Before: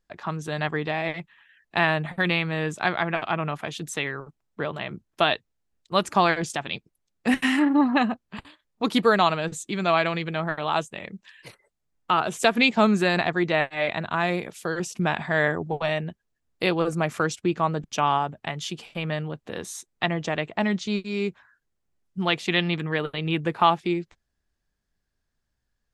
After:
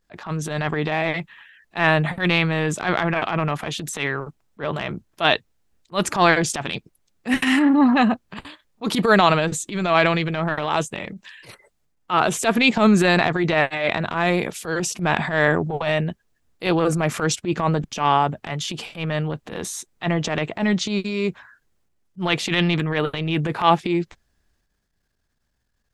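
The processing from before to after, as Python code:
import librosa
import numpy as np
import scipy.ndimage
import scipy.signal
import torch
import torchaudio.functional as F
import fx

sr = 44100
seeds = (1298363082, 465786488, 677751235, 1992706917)

y = fx.transient(x, sr, attack_db=-12, sustain_db=5)
y = F.gain(torch.from_numpy(y), 5.5).numpy()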